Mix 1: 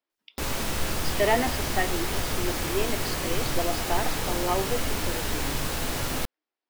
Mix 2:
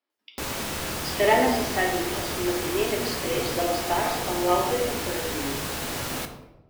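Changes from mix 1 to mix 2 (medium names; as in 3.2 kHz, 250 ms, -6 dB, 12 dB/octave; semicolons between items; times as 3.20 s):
speech: send on; master: add high-pass 110 Hz 6 dB/octave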